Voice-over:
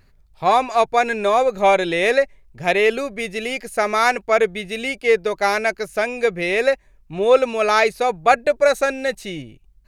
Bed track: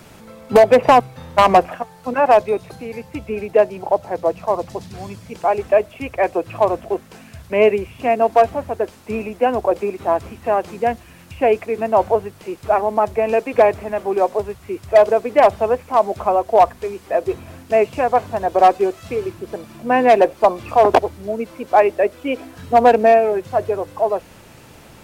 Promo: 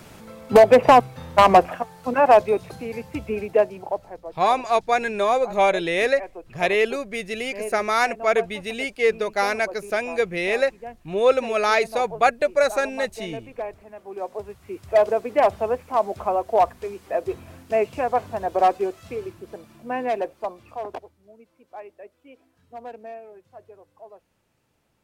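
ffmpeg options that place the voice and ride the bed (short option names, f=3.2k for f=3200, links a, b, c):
-filter_complex "[0:a]adelay=3950,volume=-3.5dB[a];[1:a]volume=11dB,afade=t=out:st=3.25:d=0.98:silence=0.141254,afade=t=in:st=14.03:d=0.93:silence=0.237137,afade=t=out:st=18.55:d=2.59:silence=0.0944061[b];[a][b]amix=inputs=2:normalize=0"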